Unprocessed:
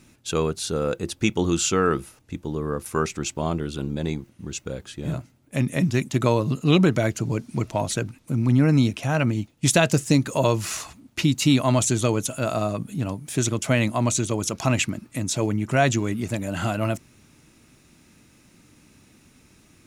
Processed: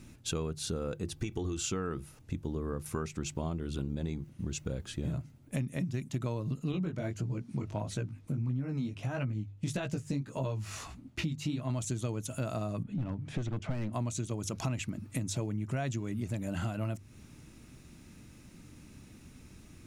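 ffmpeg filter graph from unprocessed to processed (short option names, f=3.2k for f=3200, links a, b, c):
-filter_complex "[0:a]asettb=1/sr,asplit=3[a][b][c];[a]atrim=end=1.114[d];[b]atrim=start=1.11:end=1.64,asetpts=PTS-STARTPTS,afade=t=in:d=0.004:c=qsin,afade=t=out:st=0.526:d=0.004:c=qsin,acompressor=threshold=-22dB:ratio=6:attack=3.2:release=140:knee=1:detection=peak,aecho=1:1:2.6:0.48,atrim=end_sample=23373[e];[c]atrim=start=1.636[f];[d][e]acrossfade=d=0.004:c1=hsin:c2=qsin[g];[g][f]acrossfade=d=0.004:c1=qsin:c2=hsin,asettb=1/sr,asplit=3[h][i][j];[h]atrim=end=6.724[k];[i]atrim=start=6.72:end=11.7,asetpts=PTS-STARTPTS,afade=t=in:d=0.004:c=qsin,afade=t=out:st=4.976:d=0.004:c=qsin,highshelf=f=6.1k:g=-8,flanger=delay=15:depth=6.4:speed=1.6[l];[j]atrim=start=11.696[m];[k][l]acrossfade=d=0.004:c1=hsin:c2=qsin[n];[n][m]acrossfade=d=0.004:c1=qsin:c2=hsin,asettb=1/sr,asplit=3[o][p][q];[o]atrim=end=12.834[r];[p]atrim=start=12.83:end=13.93,asetpts=PTS-STARTPTS,afade=t=in:d=0.004:c=qsin,afade=t=out:st=1.096:d=0.004:c=qsin,lowpass=2.8k,aeval=exprs='clip(val(0),-1,0.075)':c=same[s];[q]atrim=start=13.926[t];[r][s]acrossfade=d=0.004:c1=hsin:c2=qsin[u];[u][t]acrossfade=d=0.004:c1=qsin:c2=hsin,lowshelf=f=190:g=11.5,bandreject=f=50:t=h:w=6,bandreject=f=100:t=h:w=6,bandreject=f=150:t=h:w=6,acompressor=threshold=-29dB:ratio=6,volume=-3dB"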